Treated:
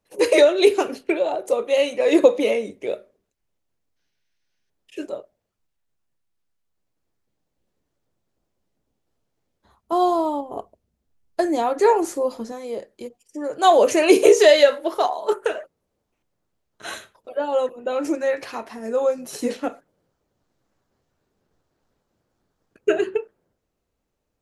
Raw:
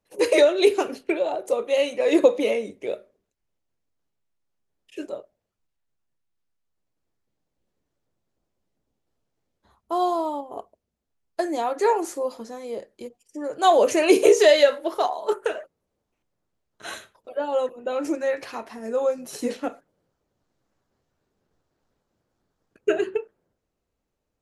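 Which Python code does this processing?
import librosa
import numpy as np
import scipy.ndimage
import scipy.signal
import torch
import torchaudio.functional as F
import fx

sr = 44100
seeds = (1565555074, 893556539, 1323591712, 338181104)

y = fx.spec_box(x, sr, start_s=3.96, length_s=0.74, low_hz=1400.0, high_hz=6500.0, gain_db=11)
y = fx.low_shelf(y, sr, hz=250.0, db=9.0, at=(9.92, 12.52))
y = y * 10.0 ** (2.5 / 20.0)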